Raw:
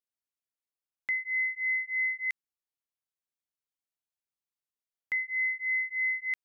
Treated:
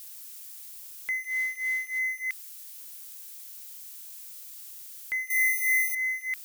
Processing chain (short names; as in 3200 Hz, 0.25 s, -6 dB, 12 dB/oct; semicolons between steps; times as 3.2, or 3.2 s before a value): switching spikes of -37 dBFS; 1.24–1.99 modulation noise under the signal 23 dB; 5.3–5.95 tilt +4.5 dB/oct